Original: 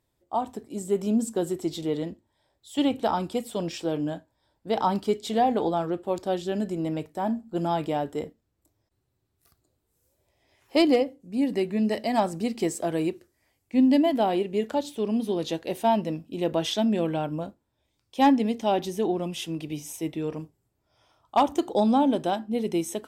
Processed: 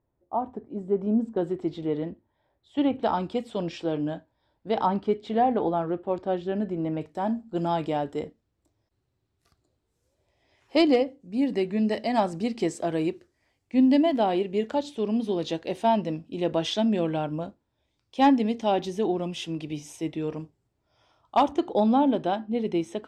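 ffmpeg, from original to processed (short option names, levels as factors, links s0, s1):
-af "asetnsamples=n=441:p=0,asendcmd='1.37 lowpass f 2200;3.03 lowpass f 3900;4.86 lowpass f 2300;7.01 lowpass f 6100;21.51 lowpass f 3500',lowpass=1200"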